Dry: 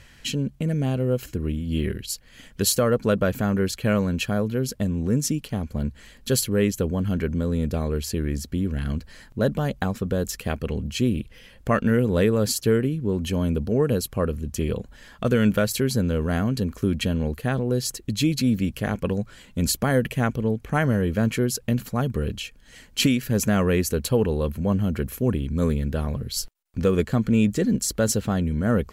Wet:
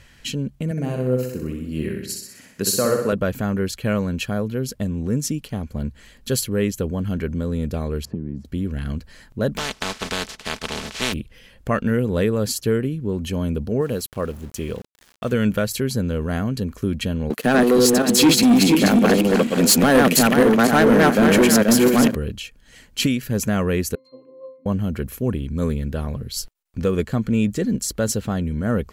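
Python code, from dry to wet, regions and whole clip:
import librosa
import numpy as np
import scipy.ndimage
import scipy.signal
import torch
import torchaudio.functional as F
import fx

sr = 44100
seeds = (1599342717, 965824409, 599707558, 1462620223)

y = fx.chain(x, sr, fx.highpass(hz=140.0, slope=12),
    fx.peak_eq(hz=3300.0, db=-12.5, octaves=0.24),
    fx.echo_feedback(ms=63, feedback_pct=55, wet_db=-4.5), at=(0.71, 3.13))
y = fx.chain(y, sr, fx.zero_step(step_db=-37.0),
    fx.bandpass_q(hz=190.0, q=1.6),
    fx.band_squash(depth_pct=100), at=(8.05, 8.45))
y = fx.spec_flatten(y, sr, power=0.2, at=(9.56, 11.12), fade=0.02)
y = fx.lowpass(y, sr, hz=5200.0, slope=12, at=(9.56, 11.12), fade=0.02)
y = fx.comb(y, sr, ms=4.6, depth=0.4, at=(9.56, 11.12), fade=0.02)
y = fx.chain(y, sr, fx.low_shelf(hz=220.0, db=-5.5),
    fx.sample_gate(floor_db=-41.0), at=(13.81, 15.33))
y = fx.chain(y, sr, fx.reverse_delay_fb(ms=241, feedback_pct=47, wet_db=-0.5),
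    fx.highpass(hz=200.0, slope=24),
    fx.leveller(passes=3), at=(17.3, 22.15))
y = fx.chain(y, sr, fx.highpass(hz=310.0, slope=24),
    fx.octave_resonator(note='C', decay_s=0.46), at=(23.95, 24.66))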